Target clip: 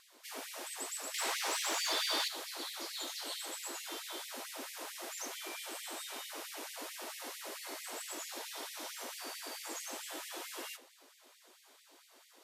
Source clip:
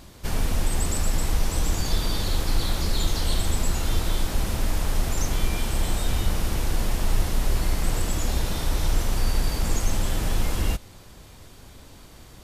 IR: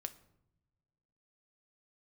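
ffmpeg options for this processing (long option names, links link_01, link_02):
-filter_complex "[0:a]asettb=1/sr,asplit=3[link_01][link_02][link_03];[link_01]atrim=end=1.144[link_04];[link_02]atrim=start=1.14:end=2.28,asetpts=PTS-STARTPTS,afade=type=in:duration=0.004:curve=qsin,afade=type=out:start_time=1.136:duration=0.004:curve=qsin,asplit=2[link_05][link_06];[link_06]highpass=frequency=720:poles=1,volume=19dB,asoftclip=type=tanh:threshold=-10dB[link_07];[link_05][link_07]amix=inputs=2:normalize=0,lowpass=frequency=4300:poles=1,volume=-6dB[link_08];[link_03]atrim=start=2.276[link_09];[link_04][link_08]acrossfade=duration=0.004:curve1=hsin:curve2=qsin[link_10];[link_10][link_09]acrossfade=duration=0.004:curve1=qsin:curve2=hsin[link_11];[1:a]atrim=start_sample=2205,asetrate=70560,aresample=44100[link_12];[link_11][link_12]afir=irnorm=-1:irlink=0,afftfilt=real='re*gte(b*sr/1024,250*pow(1900/250,0.5+0.5*sin(2*PI*4.5*pts/sr)))':imag='im*gte(b*sr/1024,250*pow(1900/250,0.5+0.5*sin(2*PI*4.5*pts/sr)))':win_size=1024:overlap=0.75,volume=-2.5dB"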